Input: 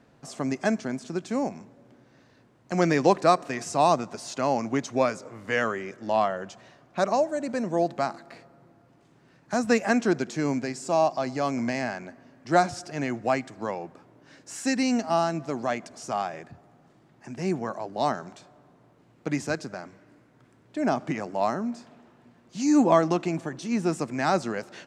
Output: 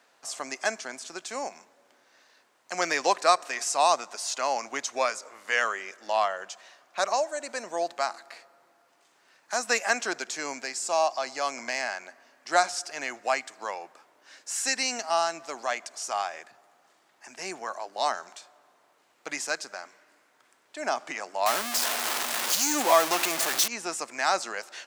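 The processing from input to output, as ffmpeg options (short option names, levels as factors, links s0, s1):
-filter_complex "[0:a]asettb=1/sr,asplit=3[s0][s1][s2];[s0]atrim=end=21.464[s3];[s1]atrim=start=21.46:end=23.68,asetpts=PTS-STARTPTS,afade=t=in:d=0.004:c=qsin,afade=t=out:st=2.216:d=0.004:c=qsin,aeval=exprs='val(0)+0.5*0.0708*sgn(val(0))':c=same[s4];[s2]atrim=start=23.676[s5];[s3][s4]acrossfade=d=0.004:c1=hsin:c2=qsin[s6];[s6][s5]acrossfade=d=0.004:c1=qsin:c2=hsin,highpass=770,highshelf=f=4100:g=8,volume=1.19"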